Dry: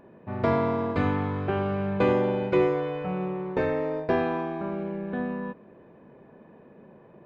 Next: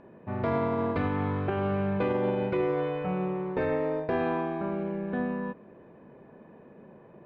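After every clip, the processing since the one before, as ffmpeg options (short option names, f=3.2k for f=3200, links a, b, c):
-af "lowpass=4k,alimiter=limit=-19dB:level=0:latency=1:release=54"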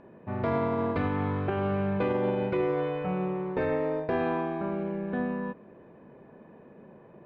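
-af anull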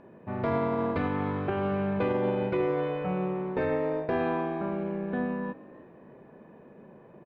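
-filter_complex "[0:a]bandreject=f=50:t=h:w=6,bandreject=f=100:t=h:w=6,asplit=4[a][b][c][d];[b]adelay=305,afreqshift=61,volume=-21dB[e];[c]adelay=610,afreqshift=122,volume=-29.6dB[f];[d]adelay=915,afreqshift=183,volume=-38.3dB[g];[a][e][f][g]amix=inputs=4:normalize=0"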